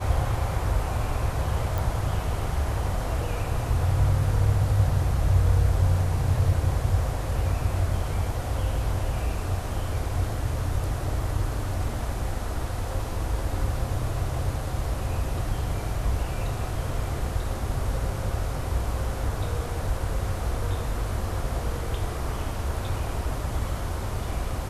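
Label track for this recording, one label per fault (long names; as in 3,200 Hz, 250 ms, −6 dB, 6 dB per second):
1.780000	1.780000	click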